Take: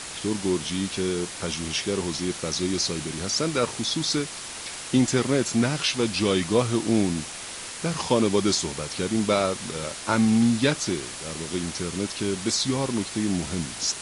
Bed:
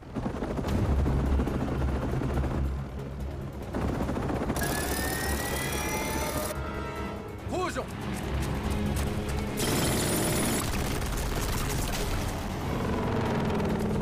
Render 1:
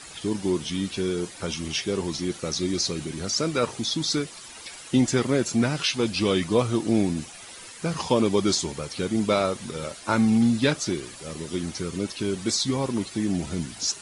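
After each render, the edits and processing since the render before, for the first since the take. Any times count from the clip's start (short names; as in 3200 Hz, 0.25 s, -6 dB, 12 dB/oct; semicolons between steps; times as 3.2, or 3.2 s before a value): denoiser 11 dB, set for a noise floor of -37 dBFS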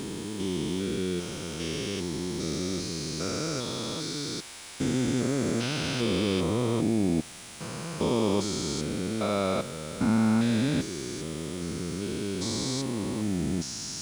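stepped spectrum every 0.4 s; bit-crush 9-bit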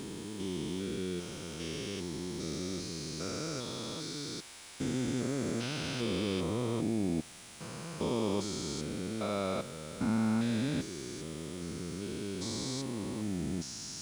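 gain -6.5 dB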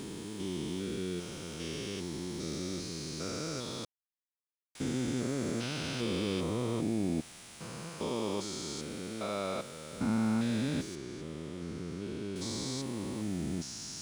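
3.85–4.75 mute; 7.89–9.93 low shelf 270 Hz -6.5 dB; 10.95–12.36 LPF 2700 Hz 6 dB/oct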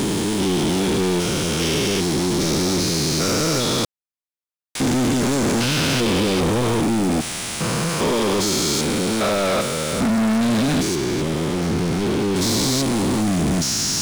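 in parallel at -1 dB: limiter -25.5 dBFS, peak gain reduction 6.5 dB; on the sum: sample leveller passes 5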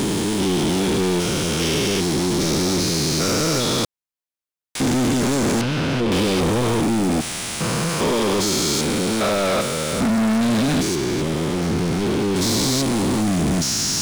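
5.61–6.12 LPF 1500 Hz 6 dB/oct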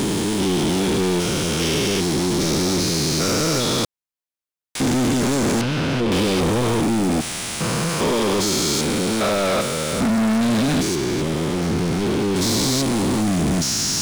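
nothing audible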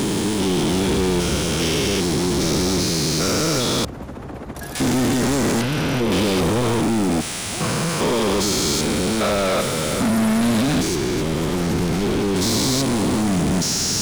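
add bed -3 dB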